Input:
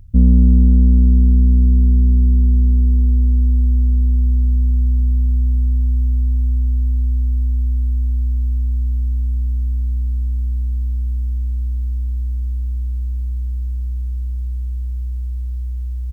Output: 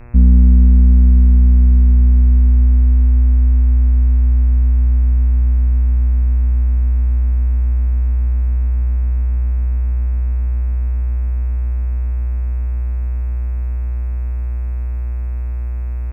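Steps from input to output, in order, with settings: low shelf 180 Hz +9 dB; buzz 120 Hz, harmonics 22, -37 dBFS -5 dB/oct; gain -6 dB

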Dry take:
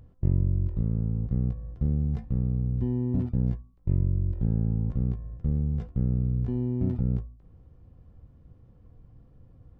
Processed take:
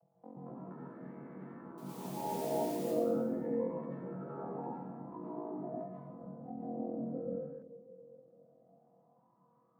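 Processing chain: arpeggiated vocoder bare fifth, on E3, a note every 0.174 s; compressor 2:1, threshold -31 dBFS, peak gain reduction 6.5 dB; wah 0.23 Hz 470–1100 Hz, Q 9.9; ring modulator 22 Hz; 2.14–2.77 requantised 12-bit, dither triangular; plate-style reverb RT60 1.3 s, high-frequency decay 0.9×, pre-delay 0.115 s, DRR -5.5 dB; echoes that change speed 0.288 s, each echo +5 st, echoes 2; gain +15.5 dB

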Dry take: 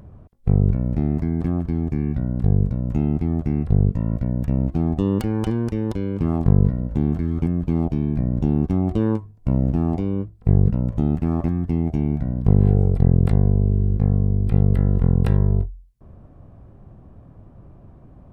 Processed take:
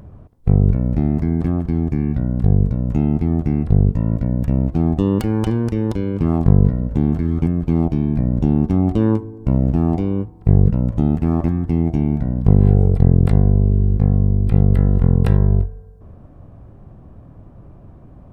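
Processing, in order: FDN reverb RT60 1.8 s, high-frequency decay 0.3×, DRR 18.5 dB; gain +3.5 dB

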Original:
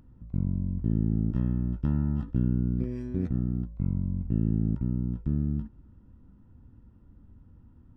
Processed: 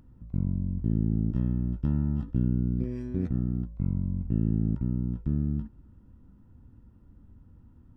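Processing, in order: 0.52–2.85 dynamic EQ 1400 Hz, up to -4 dB, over -48 dBFS, Q 0.73

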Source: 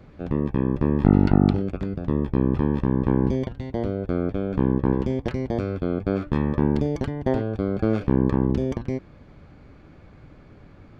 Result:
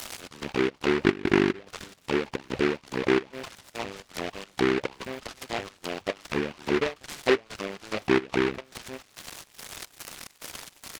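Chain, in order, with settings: switching spikes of -20.5 dBFS; chopper 2.4 Hz, depth 60%, duty 65%; on a send: frequency-shifting echo 0.247 s, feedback 59%, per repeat -110 Hz, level -19.5 dB; on the sum: reverb removal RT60 1.7 s; auto-wah 380–3600 Hz, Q 7.2, down, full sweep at -18.5 dBFS; in parallel at +2 dB: compressor, threshold -43 dBFS, peak gain reduction 16.5 dB; on the sum: low shelf 190 Hz +7.5 dB; noise-modulated delay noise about 1600 Hz, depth 0.18 ms; gain +6.5 dB

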